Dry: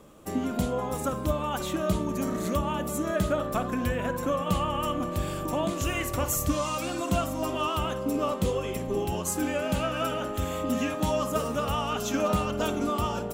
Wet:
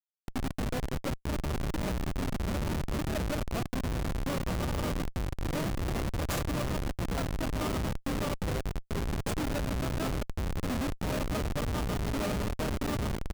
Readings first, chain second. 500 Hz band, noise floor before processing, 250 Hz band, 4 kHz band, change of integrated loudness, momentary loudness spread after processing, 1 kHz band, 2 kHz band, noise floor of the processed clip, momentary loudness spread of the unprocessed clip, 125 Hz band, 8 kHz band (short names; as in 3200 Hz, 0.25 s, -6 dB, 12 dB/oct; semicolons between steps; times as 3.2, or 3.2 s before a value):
-7.5 dB, -34 dBFS, -4.5 dB, -4.5 dB, -4.5 dB, 3 LU, -8.5 dB, -3.5 dB, -55 dBFS, 3 LU, 0.0 dB, -7.5 dB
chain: downsampling 32000 Hz; Schmitt trigger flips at -24.5 dBFS; gain -2 dB